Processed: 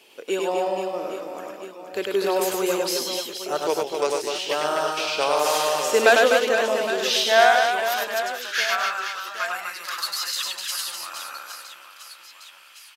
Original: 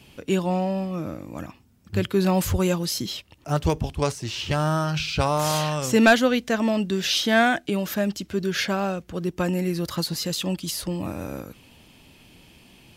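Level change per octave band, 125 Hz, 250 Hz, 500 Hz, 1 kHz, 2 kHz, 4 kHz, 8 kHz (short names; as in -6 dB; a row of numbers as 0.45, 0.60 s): under -20 dB, -10.5 dB, +3.5 dB, +4.5 dB, +3.5 dB, +3.0 dB, +3.0 dB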